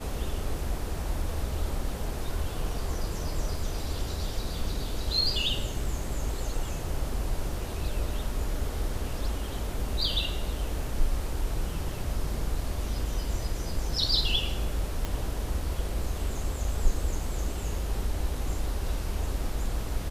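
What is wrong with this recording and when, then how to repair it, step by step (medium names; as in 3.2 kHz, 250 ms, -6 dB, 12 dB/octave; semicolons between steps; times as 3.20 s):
15.05 s: pop -17 dBFS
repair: de-click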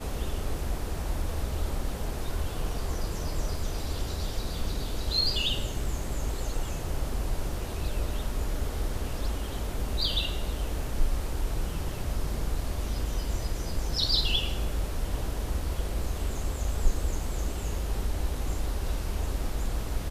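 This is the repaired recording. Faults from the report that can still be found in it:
15.05 s: pop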